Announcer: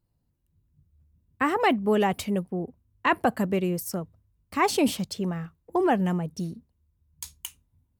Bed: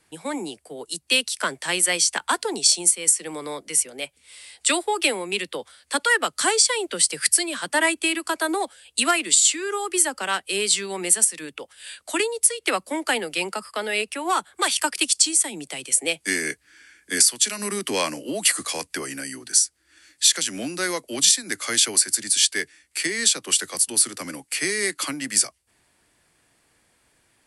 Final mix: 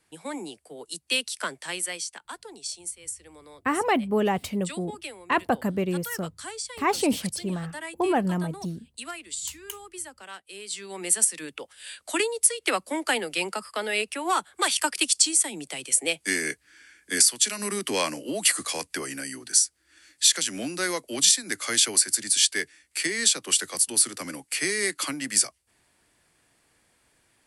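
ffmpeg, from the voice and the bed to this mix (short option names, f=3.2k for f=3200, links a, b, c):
-filter_complex "[0:a]adelay=2250,volume=-1dB[a];[1:a]volume=9.5dB,afade=t=out:st=1.42:d=0.75:silence=0.266073,afade=t=in:st=10.66:d=0.65:silence=0.177828[b];[a][b]amix=inputs=2:normalize=0"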